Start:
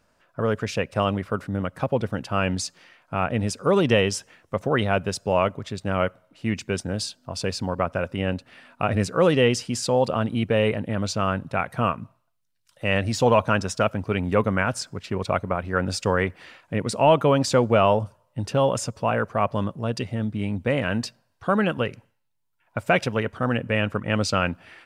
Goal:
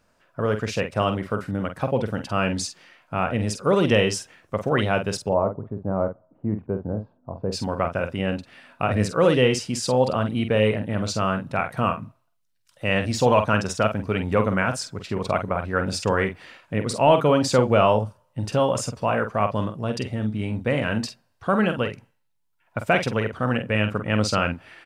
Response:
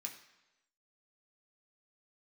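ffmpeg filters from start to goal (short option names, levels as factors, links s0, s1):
-filter_complex "[0:a]asplit=3[s0][s1][s2];[s0]afade=t=out:st=5.28:d=0.02[s3];[s1]lowpass=f=1000:w=0.5412,lowpass=f=1000:w=1.3066,afade=t=in:st=5.28:d=0.02,afade=t=out:st=7.51:d=0.02[s4];[s2]afade=t=in:st=7.51:d=0.02[s5];[s3][s4][s5]amix=inputs=3:normalize=0,asplit=2[s6][s7];[s7]adelay=47,volume=0.398[s8];[s6][s8]amix=inputs=2:normalize=0"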